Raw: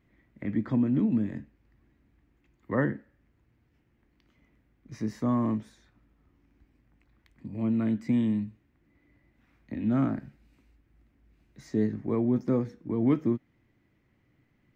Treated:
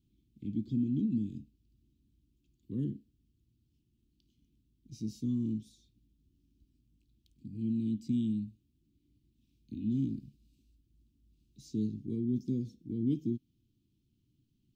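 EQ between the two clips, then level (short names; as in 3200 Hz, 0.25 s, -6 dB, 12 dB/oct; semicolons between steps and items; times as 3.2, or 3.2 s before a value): inverse Chebyshev band-stop 570–2000 Hz, stop band 40 dB; bell 330 Hz -3.5 dB 1 oct; low shelf 500 Hz -3.5 dB; -1.0 dB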